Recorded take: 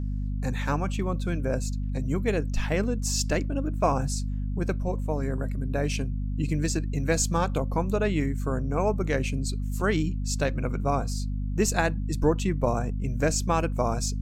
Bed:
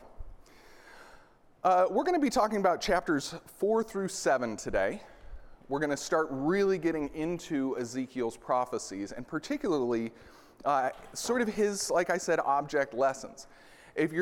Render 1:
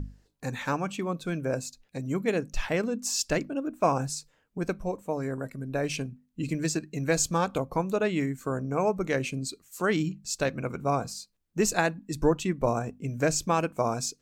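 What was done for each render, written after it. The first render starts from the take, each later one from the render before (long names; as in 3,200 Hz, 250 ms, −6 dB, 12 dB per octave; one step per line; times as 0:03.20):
mains-hum notches 50/100/150/200/250 Hz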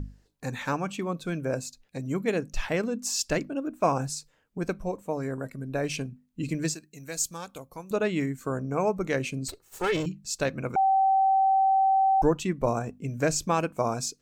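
0:06.74–0:07.91: first-order pre-emphasis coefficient 0.8
0:09.48–0:10.06: lower of the sound and its delayed copy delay 2.3 ms
0:10.76–0:12.22: beep over 772 Hz −18.5 dBFS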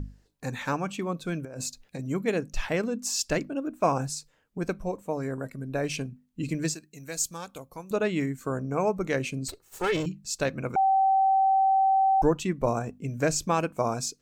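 0:01.45–0:01.99: compressor whose output falls as the input rises −37 dBFS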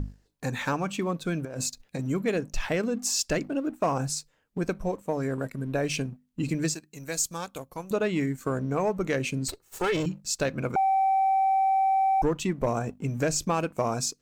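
leveller curve on the samples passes 1
downward compressor 2 to 1, threshold −25 dBFS, peak gain reduction 5.5 dB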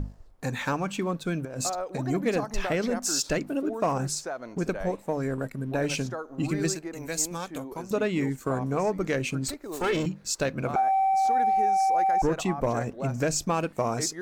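mix in bed −8 dB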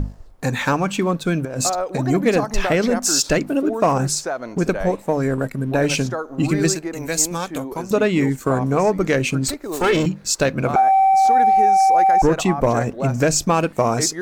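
level +9 dB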